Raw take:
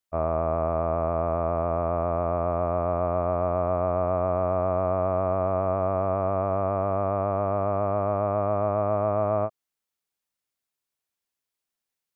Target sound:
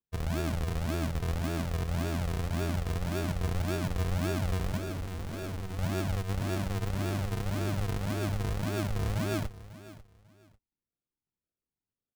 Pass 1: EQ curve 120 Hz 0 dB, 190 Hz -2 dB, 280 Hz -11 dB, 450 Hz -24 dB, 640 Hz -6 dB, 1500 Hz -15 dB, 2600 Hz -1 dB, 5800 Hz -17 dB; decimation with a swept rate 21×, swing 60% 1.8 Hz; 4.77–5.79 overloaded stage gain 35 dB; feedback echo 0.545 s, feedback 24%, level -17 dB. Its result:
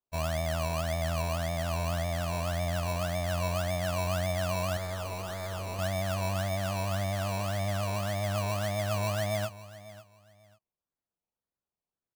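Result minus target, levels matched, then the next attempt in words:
decimation with a swept rate: distortion -8 dB
EQ curve 120 Hz 0 dB, 190 Hz -2 dB, 280 Hz -11 dB, 450 Hz -24 dB, 640 Hz -6 dB, 1500 Hz -15 dB, 2600 Hz -1 dB, 5800 Hz -17 dB; decimation with a swept rate 61×, swing 60% 1.8 Hz; 4.77–5.79 overloaded stage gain 35 dB; feedback echo 0.545 s, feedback 24%, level -17 dB

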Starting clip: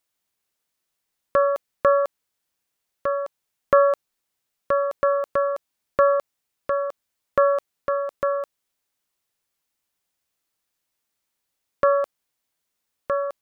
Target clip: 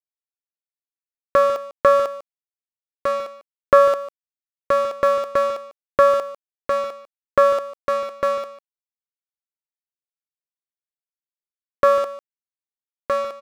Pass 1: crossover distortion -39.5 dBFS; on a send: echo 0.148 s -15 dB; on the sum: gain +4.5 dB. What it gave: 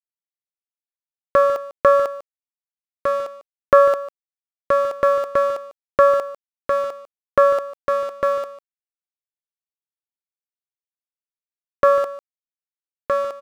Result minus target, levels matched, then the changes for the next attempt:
crossover distortion: distortion -7 dB
change: crossover distortion -33 dBFS

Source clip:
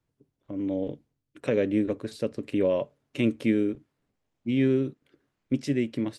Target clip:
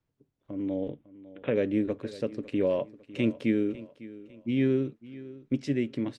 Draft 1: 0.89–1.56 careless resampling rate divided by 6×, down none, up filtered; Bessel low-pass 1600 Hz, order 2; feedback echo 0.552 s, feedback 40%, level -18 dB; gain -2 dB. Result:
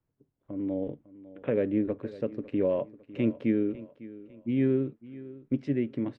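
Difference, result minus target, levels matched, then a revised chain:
2000 Hz band -4.5 dB
0.89–1.56 careless resampling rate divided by 6×, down none, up filtered; Bessel low-pass 5800 Hz, order 2; feedback echo 0.552 s, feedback 40%, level -18 dB; gain -2 dB

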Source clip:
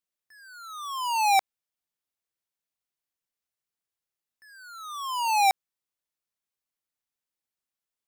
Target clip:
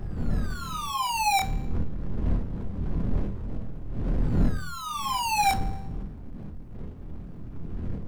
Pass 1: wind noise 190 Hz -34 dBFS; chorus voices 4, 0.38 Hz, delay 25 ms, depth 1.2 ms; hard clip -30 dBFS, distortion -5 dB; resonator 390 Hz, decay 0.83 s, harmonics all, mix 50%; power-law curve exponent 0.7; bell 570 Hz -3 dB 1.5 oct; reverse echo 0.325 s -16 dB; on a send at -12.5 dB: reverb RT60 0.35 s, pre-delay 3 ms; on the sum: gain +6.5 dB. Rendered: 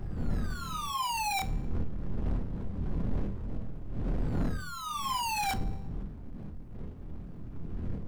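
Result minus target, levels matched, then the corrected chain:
hard clip: distortion +15 dB
wind noise 190 Hz -34 dBFS; chorus voices 4, 0.38 Hz, delay 25 ms, depth 1.2 ms; hard clip -18.5 dBFS, distortion -20 dB; resonator 390 Hz, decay 0.83 s, harmonics all, mix 50%; power-law curve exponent 0.7; bell 570 Hz -3 dB 1.5 oct; reverse echo 0.325 s -16 dB; on a send at -12.5 dB: reverb RT60 0.35 s, pre-delay 3 ms; on the sum: gain +6.5 dB

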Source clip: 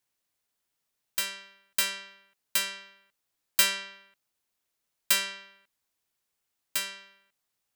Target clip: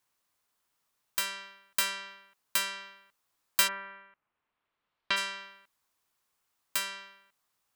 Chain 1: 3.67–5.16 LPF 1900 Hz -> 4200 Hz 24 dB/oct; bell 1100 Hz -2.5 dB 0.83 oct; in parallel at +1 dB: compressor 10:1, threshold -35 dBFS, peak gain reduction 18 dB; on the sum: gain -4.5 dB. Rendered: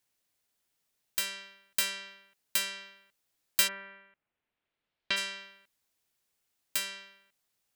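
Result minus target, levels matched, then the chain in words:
1000 Hz band -7.0 dB
3.67–5.16 LPF 1900 Hz -> 4200 Hz 24 dB/oct; bell 1100 Hz +7.5 dB 0.83 oct; in parallel at +1 dB: compressor 10:1, threshold -35 dBFS, peak gain reduction 18.5 dB; on the sum: gain -4.5 dB

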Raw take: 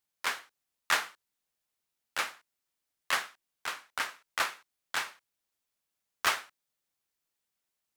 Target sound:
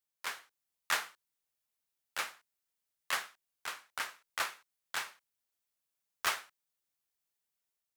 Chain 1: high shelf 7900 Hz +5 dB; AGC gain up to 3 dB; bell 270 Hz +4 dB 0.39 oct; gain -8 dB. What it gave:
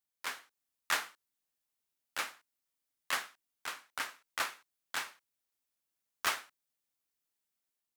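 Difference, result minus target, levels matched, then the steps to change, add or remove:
250 Hz band +4.0 dB
change: bell 270 Hz -4 dB 0.39 oct

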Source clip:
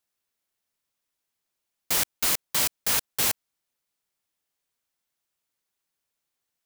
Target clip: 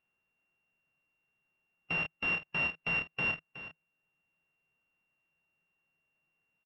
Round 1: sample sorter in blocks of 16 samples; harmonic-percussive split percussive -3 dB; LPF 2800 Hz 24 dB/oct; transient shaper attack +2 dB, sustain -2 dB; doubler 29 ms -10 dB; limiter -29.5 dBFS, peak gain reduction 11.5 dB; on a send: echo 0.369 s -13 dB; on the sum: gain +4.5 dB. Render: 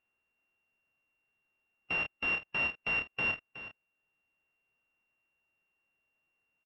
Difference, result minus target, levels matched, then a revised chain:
125 Hz band -5.0 dB
sample sorter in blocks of 16 samples; harmonic-percussive split percussive -3 dB; LPF 2800 Hz 24 dB/oct; bell 160 Hz +11 dB 0.35 oct; transient shaper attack +2 dB, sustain -2 dB; doubler 29 ms -10 dB; limiter -29.5 dBFS, peak gain reduction 12 dB; on a send: echo 0.369 s -13 dB; on the sum: gain +4.5 dB

